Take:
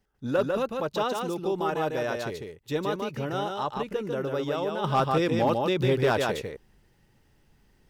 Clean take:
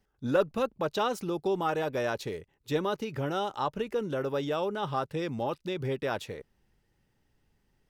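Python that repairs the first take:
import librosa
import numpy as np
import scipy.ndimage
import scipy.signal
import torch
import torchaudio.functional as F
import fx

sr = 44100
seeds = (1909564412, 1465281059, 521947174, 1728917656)

y = fx.fix_declip(x, sr, threshold_db=-15.5)
y = fx.fix_echo_inverse(y, sr, delay_ms=148, level_db=-4.0)
y = fx.gain(y, sr, db=fx.steps((0.0, 0.0), (4.84, -7.5)))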